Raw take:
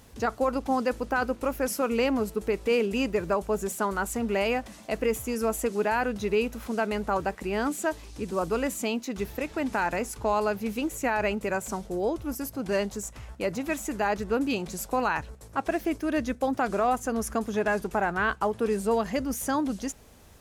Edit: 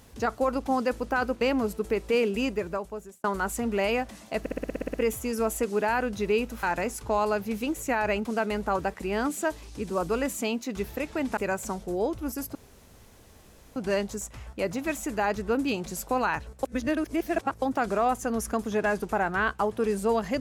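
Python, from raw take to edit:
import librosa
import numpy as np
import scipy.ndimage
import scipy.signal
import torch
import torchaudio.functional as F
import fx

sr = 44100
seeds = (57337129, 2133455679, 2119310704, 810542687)

y = fx.edit(x, sr, fx.cut(start_s=1.41, length_s=0.57),
    fx.fade_out_span(start_s=2.93, length_s=0.88),
    fx.stutter(start_s=4.97, slice_s=0.06, count=10),
    fx.move(start_s=9.78, length_s=1.62, to_s=6.66),
    fx.insert_room_tone(at_s=12.58, length_s=1.21),
    fx.reverse_span(start_s=15.45, length_s=0.99), tone=tone)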